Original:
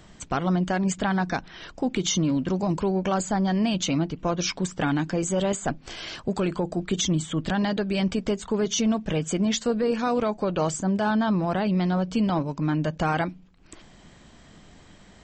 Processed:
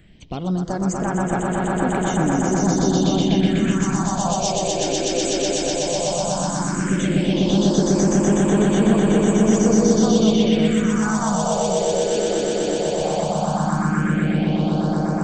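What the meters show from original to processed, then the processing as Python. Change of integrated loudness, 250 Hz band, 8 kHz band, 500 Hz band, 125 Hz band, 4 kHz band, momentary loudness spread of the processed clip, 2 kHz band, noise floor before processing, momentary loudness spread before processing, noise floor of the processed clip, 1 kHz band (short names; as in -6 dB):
+6.5 dB, +7.0 dB, +7.5 dB, +7.5 dB, +6.5 dB, +5.0 dB, 6 LU, +3.5 dB, -51 dBFS, 5 LU, -25 dBFS, +5.5 dB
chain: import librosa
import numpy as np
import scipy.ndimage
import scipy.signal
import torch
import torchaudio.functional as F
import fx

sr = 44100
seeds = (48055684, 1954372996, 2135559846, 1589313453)

y = fx.echo_swell(x, sr, ms=124, loudest=8, wet_db=-3.5)
y = fx.phaser_stages(y, sr, stages=4, low_hz=180.0, high_hz=4900.0, hz=0.14, feedback_pct=30)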